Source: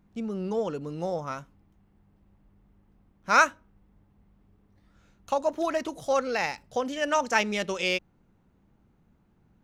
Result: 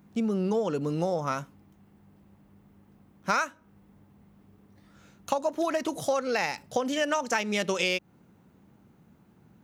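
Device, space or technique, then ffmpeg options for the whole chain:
ASMR close-microphone chain: -af "highpass=130,lowshelf=f=160:g=4.5,acompressor=threshold=0.0316:ratio=10,highshelf=f=8700:g=7,volume=2.11"

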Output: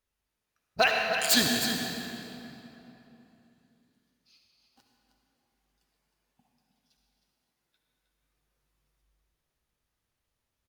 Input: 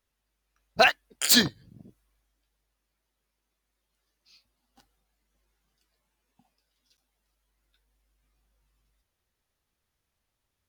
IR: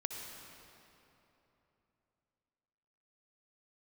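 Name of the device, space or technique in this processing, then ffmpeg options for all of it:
cave: -filter_complex "[0:a]aecho=1:1:313:0.355[s0];[1:a]atrim=start_sample=2205[s1];[s0][s1]afir=irnorm=-1:irlink=0,volume=0.75"

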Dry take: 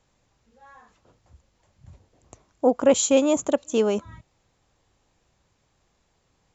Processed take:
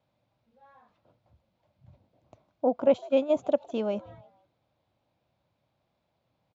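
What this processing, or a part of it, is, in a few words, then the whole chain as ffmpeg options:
frequency-shifting delay pedal into a guitar cabinet: -filter_complex "[0:a]asplit=3[s0][s1][s2];[s0]afade=t=out:st=2.85:d=0.02[s3];[s1]agate=range=0.1:threshold=0.126:ratio=16:detection=peak,afade=t=in:st=2.85:d=0.02,afade=t=out:st=3.29:d=0.02[s4];[s2]afade=t=in:st=3.29:d=0.02[s5];[s3][s4][s5]amix=inputs=3:normalize=0,asplit=4[s6][s7][s8][s9];[s7]adelay=155,afreqshift=120,volume=0.0708[s10];[s8]adelay=310,afreqshift=240,volume=0.0292[s11];[s9]adelay=465,afreqshift=360,volume=0.0119[s12];[s6][s10][s11][s12]amix=inputs=4:normalize=0,highpass=100,equalizer=f=120:t=q:w=4:g=4,equalizer=f=420:t=q:w=4:g=-7,equalizer=f=610:t=q:w=4:g=7,equalizer=f=1200:t=q:w=4:g=-4,equalizer=f=1800:t=q:w=4:g=-8,equalizer=f=2900:t=q:w=4:g=-4,lowpass=f=4000:w=0.5412,lowpass=f=4000:w=1.3066,volume=0.501"

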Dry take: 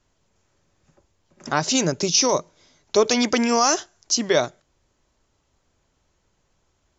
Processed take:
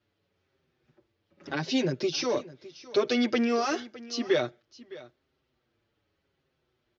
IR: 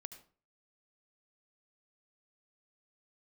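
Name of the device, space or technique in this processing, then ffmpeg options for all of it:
barber-pole flanger into a guitar amplifier: -filter_complex "[0:a]lowpass=6200,asplit=2[s0][s1];[s1]adelay=6.5,afreqshift=-0.85[s2];[s0][s2]amix=inputs=2:normalize=1,asoftclip=type=tanh:threshold=0.188,highpass=95,equalizer=f=190:t=q:w=4:g=-5,equalizer=f=360:t=q:w=4:g=4,equalizer=f=680:t=q:w=4:g=-4,equalizer=f=980:t=q:w=4:g=-8,lowpass=f=4500:w=0.5412,lowpass=f=4500:w=1.3066,asettb=1/sr,asplit=3[s3][s4][s5];[s3]atrim=end=1.504[s6];[s4]atrim=start=1.5:end=1.95,asetpts=PTS-STARTPTS,afade=t=in:d=0.004:c=qsin,afade=t=out:st=0.446:d=0.004:c=qsin,bandreject=f=1300:w=5.3[s7];[s5]atrim=start=1.946[s8];[s6][s7]acrossfade=d=0.004:c1=hsin:c2=qsin[s9];[s9][s8]acrossfade=d=0.004:c1=qsin:c2=hsin,aecho=1:1:611:0.119,volume=0.841"

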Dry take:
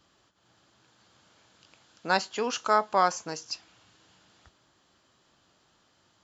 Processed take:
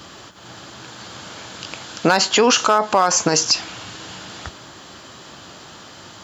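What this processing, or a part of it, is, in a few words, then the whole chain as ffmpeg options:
loud club master: -af "acompressor=threshold=0.0355:ratio=3,asoftclip=type=hard:threshold=0.0891,alimiter=level_in=33.5:limit=0.891:release=50:level=0:latency=1,highpass=62,volume=0.596"

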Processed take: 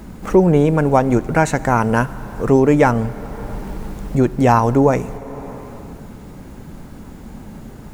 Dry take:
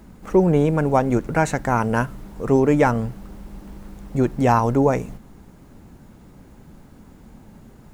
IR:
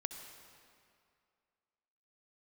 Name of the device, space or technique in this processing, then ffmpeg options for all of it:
ducked reverb: -filter_complex "[0:a]asplit=3[s0][s1][s2];[1:a]atrim=start_sample=2205[s3];[s1][s3]afir=irnorm=-1:irlink=0[s4];[s2]apad=whole_len=349949[s5];[s4][s5]sidechaincompress=threshold=0.0316:ratio=8:attack=16:release=568,volume=1.58[s6];[s0][s6]amix=inputs=2:normalize=0,volume=1.33"

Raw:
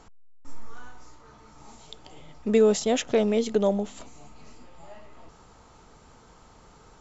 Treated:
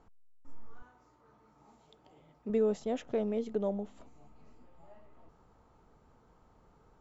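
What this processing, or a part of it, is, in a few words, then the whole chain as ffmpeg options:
through cloth: -filter_complex "[0:a]highshelf=f=2300:g=-15.5,asettb=1/sr,asplit=3[s0][s1][s2];[s0]atrim=end=0.824[s3];[s1]atrim=start=0.82:end=2.5,asetpts=PTS-STARTPTS,afade=t=in:d=0.004:c=qsin,afade=t=out:st=1.676:d=0.004:c=qsin,highpass=f=140:p=1[s4];[s2]atrim=start=2.496[s5];[s3][s4]acrossfade=d=0.004:c1=hsin:c2=qsin[s6];[s6][s5]acrossfade=d=0.004:c1=qsin:c2=hsin,volume=0.355"

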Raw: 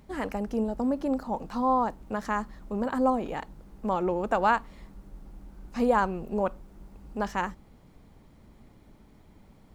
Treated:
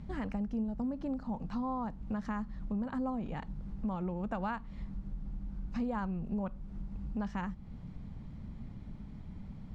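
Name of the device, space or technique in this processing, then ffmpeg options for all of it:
jukebox: -af "lowpass=5000,lowshelf=f=260:t=q:w=1.5:g=10,acompressor=threshold=0.0141:ratio=3"

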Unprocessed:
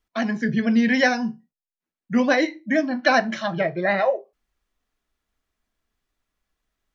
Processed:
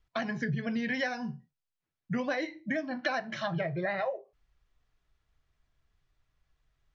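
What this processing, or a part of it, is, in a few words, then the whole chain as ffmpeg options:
jukebox: -af "lowpass=5700,lowshelf=f=170:t=q:w=3:g=7,acompressor=threshold=0.0316:ratio=5"

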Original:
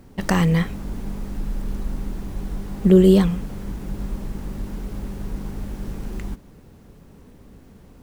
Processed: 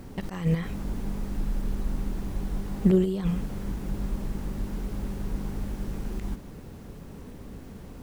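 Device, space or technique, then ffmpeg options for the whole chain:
de-esser from a sidechain: -filter_complex "[0:a]asplit=2[s0][s1];[s1]highpass=f=4100:w=0.5412,highpass=f=4100:w=1.3066,apad=whole_len=353918[s2];[s0][s2]sidechaincompress=threshold=0.00141:ratio=20:attack=2.6:release=29,volume=1.68"

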